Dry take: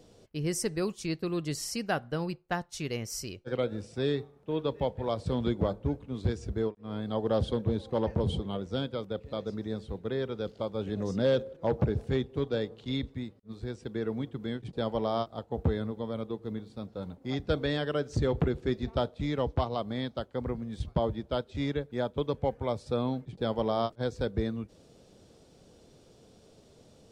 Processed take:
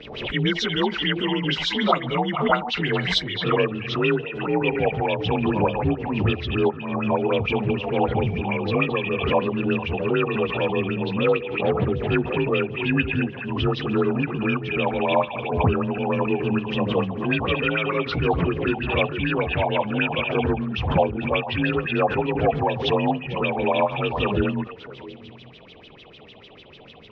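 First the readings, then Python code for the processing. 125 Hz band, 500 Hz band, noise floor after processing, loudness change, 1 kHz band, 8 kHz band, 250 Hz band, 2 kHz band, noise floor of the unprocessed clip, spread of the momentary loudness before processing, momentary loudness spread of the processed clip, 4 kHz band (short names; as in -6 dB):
+7.5 dB, +8.5 dB, -46 dBFS, +9.5 dB, +13.0 dB, n/a, +9.0 dB, +17.0 dB, -59 dBFS, 7 LU, 3 LU, +13.0 dB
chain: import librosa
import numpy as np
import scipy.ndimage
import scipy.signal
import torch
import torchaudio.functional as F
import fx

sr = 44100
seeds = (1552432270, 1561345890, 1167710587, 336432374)

p1 = fx.partial_stretch(x, sr, pct=88)
p2 = fx.high_shelf(p1, sr, hz=3700.0, db=8.0)
p3 = fx.filter_lfo_lowpass(p2, sr, shape='sine', hz=6.7, low_hz=740.0, high_hz=3400.0, q=7.3)
p4 = fx.rider(p3, sr, range_db=10, speed_s=0.5)
p5 = p4 + fx.echo_stepped(p4, sr, ms=220, hz=2600.0, octaves=-1.4, feedback_pct=70, wet_db=-8.5, dry=0)
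p6 = fx.pre_swell(p5, sr, db_per_s=60.0)
y = F.gain(torch.from_numpy(p6), 7.0).numpy()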